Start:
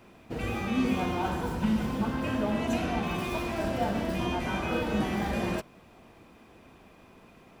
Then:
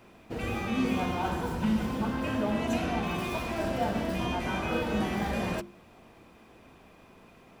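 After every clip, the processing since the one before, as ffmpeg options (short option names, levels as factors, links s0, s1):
-af "bandreject=f=50:t=h:w=6,bandreject=f=100:t=h:w=6,bandreject=f=150:t=h:w=6,bandreject=f=200:t=h:w=6,bandreject=f=250:t=h:w=6,bandreject=f=300:t=h:w=6,bandreject=f=350:t=h:w=6"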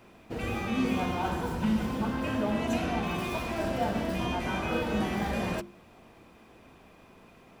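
-af anull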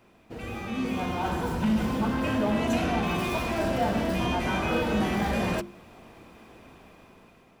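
-af "dynaudnorm=f=460:g=5:m=2.82,aeval=exprs='0.376*(cos(1*acos(clip(val(0)/0.376,-1,1)))-cos(1*PI/2))+0.0237*(cos(5*acos(clip(val(0)/0.376,-1,1)))-cos(5*PI/2))':c=same,volume=0.473"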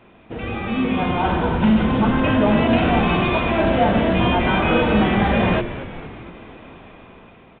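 -filter_complex "[0:a]asplit=7[s0][s1][s2][s3][s4][s5][s6];[s1]adelay=229,afreqshift=-100,volume=0.224[s7];[s2]adelay=458,afreqshift=-200,volume=0.13[s8];[s3]adelay=687,afreqshift=-300,volume=0.075[s9];[s4]adelay=916,afreqshift=-400,volume=0.0437[s10];[s5]adelay=1145,afreqshift=-500,volume=0.0254[s11];[s6]adelay=1374,afreqshift=-600,volume=0.0146[s12];[s0][s7][s8][s9][s10][s11][s12]amix=inputs=7:normalize=0,volume=2.82" -ar 8000 -c:a pcm_alaw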